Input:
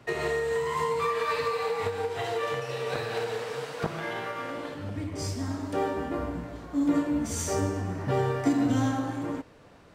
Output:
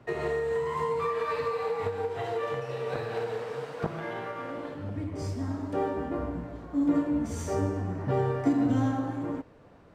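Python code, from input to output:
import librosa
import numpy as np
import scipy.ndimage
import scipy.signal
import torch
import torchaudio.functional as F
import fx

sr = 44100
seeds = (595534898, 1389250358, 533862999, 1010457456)

y = fx.high_shelf(x, sr, hz=2100.0, db=-11.5)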